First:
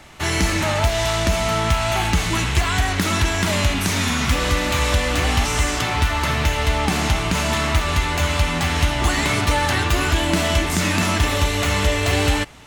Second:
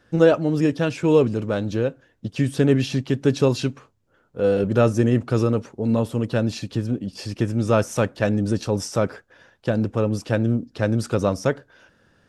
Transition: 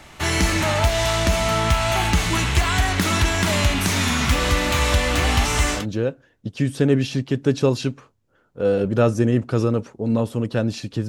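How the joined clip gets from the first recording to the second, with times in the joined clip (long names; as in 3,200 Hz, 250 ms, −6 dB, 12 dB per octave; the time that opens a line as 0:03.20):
first
0:05.79: continue with second from 0:01.58, crossfade 0.14 s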